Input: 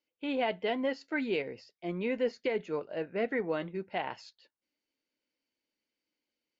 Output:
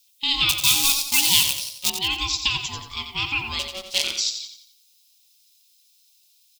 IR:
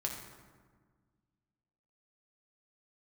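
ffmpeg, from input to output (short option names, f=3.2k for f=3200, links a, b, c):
-filter_complex "[0:a]highshelf=f=5.6k:g=9.5,asettb=1/sr,asplit=3[a][b][c];[a]atrim=end=0.494[d];[b]atrim=start=0.49:end=1.9,asetpts=PTS-STARTPTS,afade=t=in:d=0.004:c=qsin,afade=t=out:st=1.406:d=0.004:c=qsin,acrusher=bits=7:dc=4:mix=0:aa=0.000001[e];[c]atrim=start=1.896[f];[d][e]acrossfade=d=0.004:c1=hsin:c2=qsin[g];[g][f]acrossfade=d=0.004:c1=qsin:c2=hsin,asettb=1/sr,asplit=3[h][i][j];[h]atrim=end=3.594[k];[i]atrim=start=3.59:end=4.04,asetpts=PTS-STARTPTS,afade=t=in:d=0.004:c=qsin,afade=t=out:st=0.446:d=0.004:c=qsin,aeval=exprs='abs(val(0))':c=same[l];[j]atrim=start=4.036[m];[k][l]acrossfade=d=0.004:c1=hsin:c2=qsin[n];[n][m]acrossfade=d=0.004:c1=qsin:c2=hsin,aeval=exprs='val(0)*sin(2*PI*560*n/s)':c=same,aexciter=amount=15.9:drive=7.2:freq=2.6k,asplit=2[o][p];[p]aecho=0:1:89|178|267|356|445:0.398|0.163|0.0669|0.0274|0.0112[q];[o][q]amix=inputs=2:normalize=0"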